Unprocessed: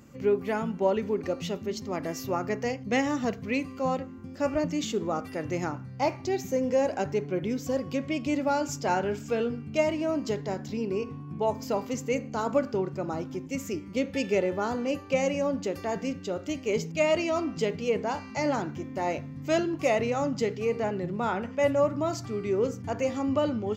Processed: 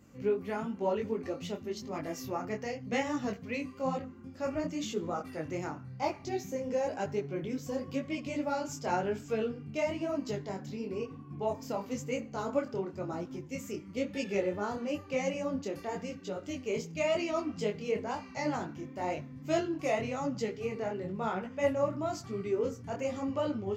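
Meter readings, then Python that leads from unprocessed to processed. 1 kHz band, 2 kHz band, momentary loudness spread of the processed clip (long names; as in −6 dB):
−5.5 dB, −5.5 dB, 6 LU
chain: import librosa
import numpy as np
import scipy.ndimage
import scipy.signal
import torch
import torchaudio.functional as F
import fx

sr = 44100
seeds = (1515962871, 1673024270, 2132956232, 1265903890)

y = fx.wow_flutter(x, sr, seeds[0], rate_hz=2.1, depth_cents=29.0)
y = fx.detune_double(y, sr, cents=34)
y = y * 10.0 ** (-2.0 / 20.0)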